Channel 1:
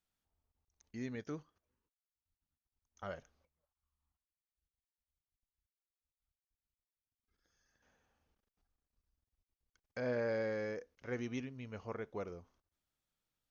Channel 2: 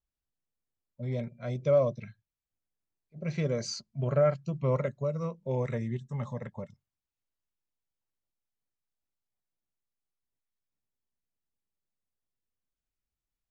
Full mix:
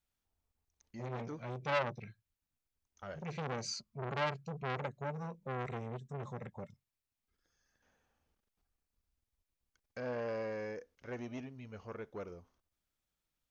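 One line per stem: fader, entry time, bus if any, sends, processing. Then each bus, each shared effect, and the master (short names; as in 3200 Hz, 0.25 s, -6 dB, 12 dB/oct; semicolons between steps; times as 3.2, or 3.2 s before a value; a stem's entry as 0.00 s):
-0.5 dB, 0.00 s, no send, dry
-3.5 dB, 0.00 s, no send, bell 2400 Hz +5 dB 0.23 oct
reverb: off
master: core saturation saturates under 1900 Hz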